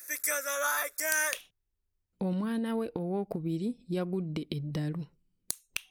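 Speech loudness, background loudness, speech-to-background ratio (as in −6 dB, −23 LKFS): −34.5 LKFS, −29.5 LKFS, −5.0 dB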